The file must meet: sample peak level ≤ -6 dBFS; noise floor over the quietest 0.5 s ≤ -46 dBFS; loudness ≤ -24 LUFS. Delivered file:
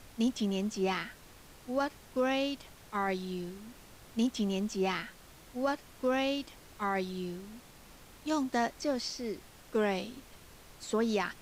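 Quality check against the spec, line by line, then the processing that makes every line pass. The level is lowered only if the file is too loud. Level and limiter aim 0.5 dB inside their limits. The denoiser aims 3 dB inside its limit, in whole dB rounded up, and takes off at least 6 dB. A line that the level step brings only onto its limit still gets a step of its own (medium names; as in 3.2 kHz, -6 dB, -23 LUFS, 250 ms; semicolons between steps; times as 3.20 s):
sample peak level -19.5 dBFS: pass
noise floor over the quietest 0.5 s -54 dBFS: pass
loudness -33.5 LUFS: pass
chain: none needed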